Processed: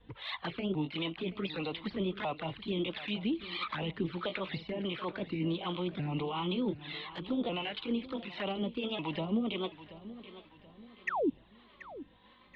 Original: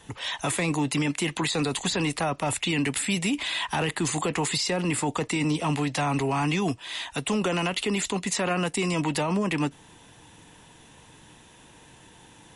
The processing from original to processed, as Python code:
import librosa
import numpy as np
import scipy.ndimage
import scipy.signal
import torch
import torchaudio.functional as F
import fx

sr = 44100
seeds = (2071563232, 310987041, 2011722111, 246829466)

y = fx.pitch_ramps(x, sr, semitones=4.5, every_ms=749)
y = scipy.signal.sosfilt(scipy.signal.ellip(4, 1.0, 50, 3700.0, 'lowpass', fs=sr, output='sos'), y)
y = fx.spec_paint(y, sr, seeds[0], shape='fall', start_s=11.07, length_s=0.23, low_hz=240.0, high_hz=2100.0, level_db=-23.0)
y = fx.env_flanger(y, sr, rest_ms=4.4, full_db=-24.5)
y = fx.add_hum(y, sr, base_hz=50, snr_db=33)
y = fx.harmonic_tremolo(y, sr, hz=1.5, depth_pct=70, crossover_hz=490.0)
y = fx.echo_feedback(y, sr, ms=731, feedback_pct=40, wet_db=-15.5)
y = y * librosa.db_to_amplitude(-2.0)